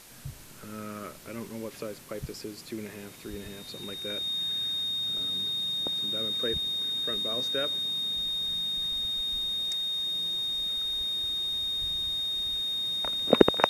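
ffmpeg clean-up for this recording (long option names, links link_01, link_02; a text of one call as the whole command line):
ffmpeg -i in.wav -af "adeclick=threshold=4,bandreject=frequency=3700:width=30,afwtdn=0.0032" out.wav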